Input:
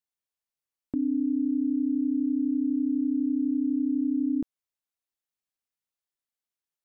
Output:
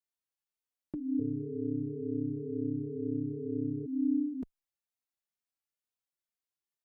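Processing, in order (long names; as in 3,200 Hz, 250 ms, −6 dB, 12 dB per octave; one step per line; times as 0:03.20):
0:01.19–0:03.86: amplitude modulation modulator 150 Hz, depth 95%
barber-pole flanger 3 ms +2.1 Hz
level −1.5 dB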